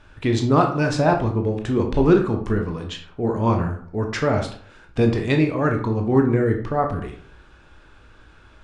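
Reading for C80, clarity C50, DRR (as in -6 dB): 12.0 dB, 8.5 dB, 3.0 dB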